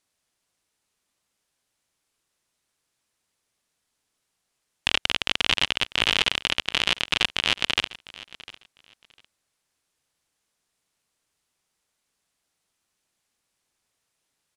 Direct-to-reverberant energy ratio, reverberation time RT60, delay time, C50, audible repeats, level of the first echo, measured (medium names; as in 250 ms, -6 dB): no reverb, no reverb, 702 ms, no reverb, 2, -19.0 dB